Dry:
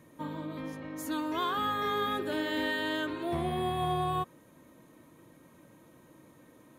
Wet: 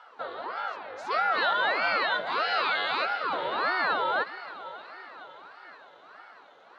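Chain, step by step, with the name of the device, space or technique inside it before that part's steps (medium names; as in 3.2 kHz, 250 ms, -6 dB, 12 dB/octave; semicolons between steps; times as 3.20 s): 1.14–1.98 s: bass shelf 160 Hz +12 dB; echo that smears into a reverb 556 ms, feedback 56%, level -15 dB; voice changer toy (ring modulator with a swept carrier 660 Hz, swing 70%, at 1.6 Hz; cabinet simulation 550–4700 Hz, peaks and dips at 1.4 kHz +4 dB, 2.4 kHz -3 dB, 4 kHz +5 dB); trim +7.5 dB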